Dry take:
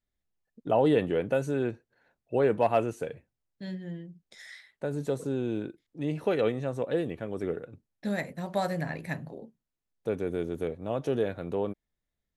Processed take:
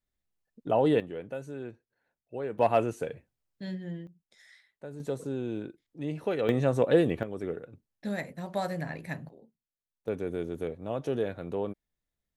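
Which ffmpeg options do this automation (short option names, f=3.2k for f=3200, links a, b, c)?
-af "asetnsamples=n=441:p=0,asendcmd='1 volume volume -10.5dB;2.59 volume volume 0.5dB;4.07 volume volume -10dB;5 volume volume -3dB;6.49 volume volume 6.5dB;7.23 volume volume -2.5dB;9.29 volume volume -11.5dB;10.08 volume volume -2dB',volume=-1dB"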